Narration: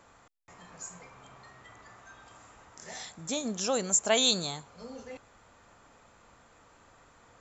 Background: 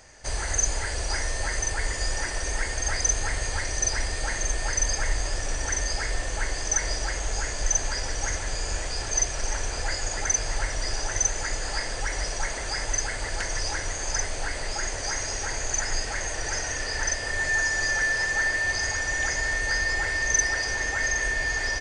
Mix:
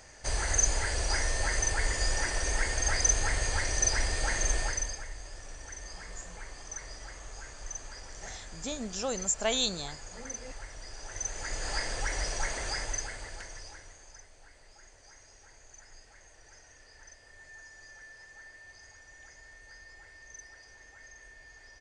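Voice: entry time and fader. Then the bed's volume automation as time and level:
5.35 s, −4.0 dB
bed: 0:04.59 −1.5 dB
0:05.08 −16.5 dB
0:10.93 −16.5 dB
0:11.71 −3.5 dB
0:12.68 −3.5 dB
0:14.26 −26.5 dB

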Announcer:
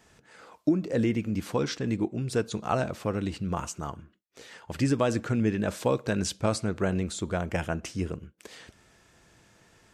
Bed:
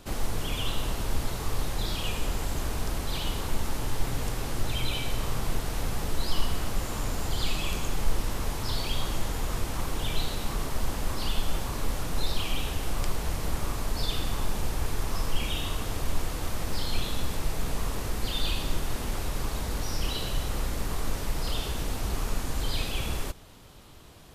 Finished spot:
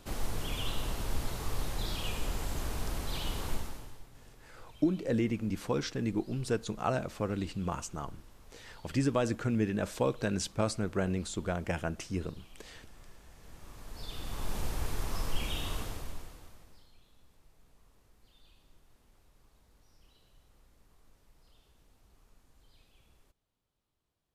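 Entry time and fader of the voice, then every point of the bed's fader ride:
4.15 s, −4.0 dB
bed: 0:03.53 −5 dB
0:04.09 −26 dB
0:13.33 −26 dB
0:14.56 −5 dB
0:15.79 −5 dB
0:16.96 −34 dB

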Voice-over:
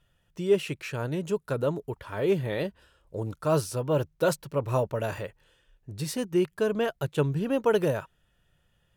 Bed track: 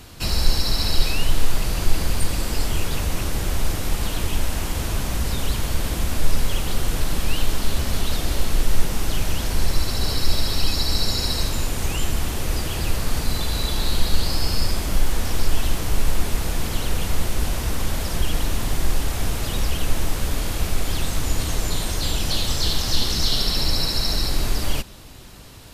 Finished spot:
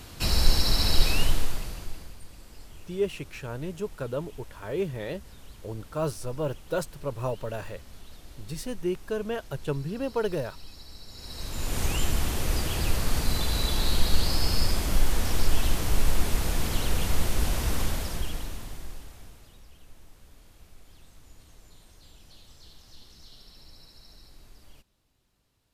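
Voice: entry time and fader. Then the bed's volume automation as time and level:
2.50 s, −4.5 dB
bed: 0:01.22 −2 dB
0:02.19 −24.5 dB
0:11.07 −24.5 dB
0:11.77 −3 dB
0:17.81 −3 dB
0:19.63 −30 dB

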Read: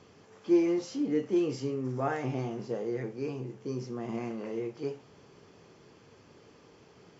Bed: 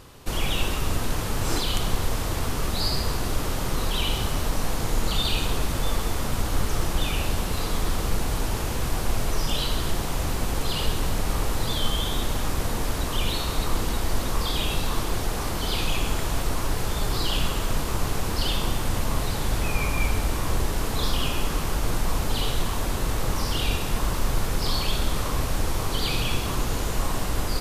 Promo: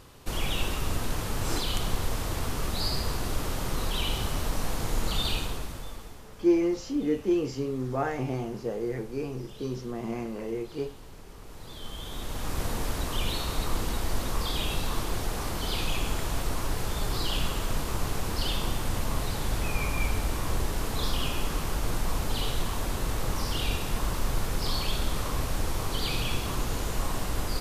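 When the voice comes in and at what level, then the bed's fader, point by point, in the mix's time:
5.95 s, +2.0 dB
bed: 0:05.31 −4 dB
0:06.31 −23 dB
0:11.36 −23 dB
0:12.61 −4 dB

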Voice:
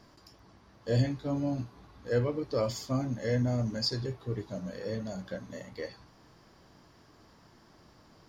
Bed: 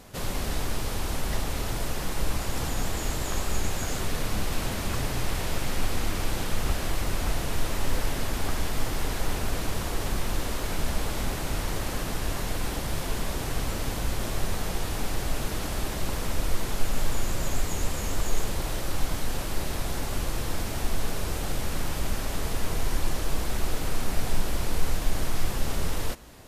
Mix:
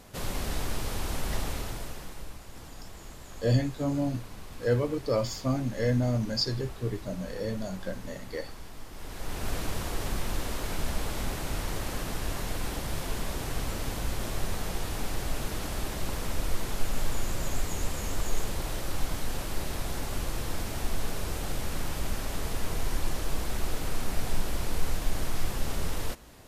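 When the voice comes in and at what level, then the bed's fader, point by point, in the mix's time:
2.55 s, +2.5 dB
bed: 0:01.48 −2.5 dB
0:02.39 −16.5 dB
0:08.88 −16.5 dB
0:09.49 −3 dB

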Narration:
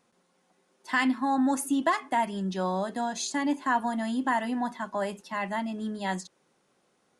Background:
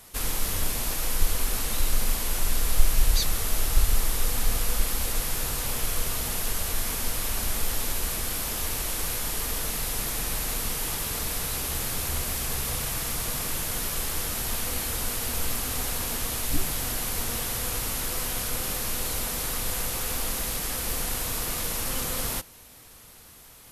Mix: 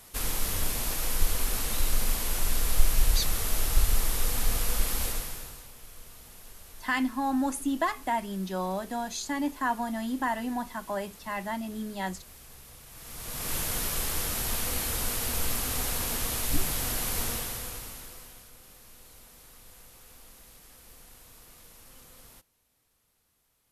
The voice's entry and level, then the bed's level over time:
5.95 s, −2.5 dB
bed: 0:05.06 −2 dB
0:05.72 −20.5 dB
0:12.86 −20.5 dB
0:13.54 −1 dB
0:17.26 −1 dB
0:18.53 −23 dB

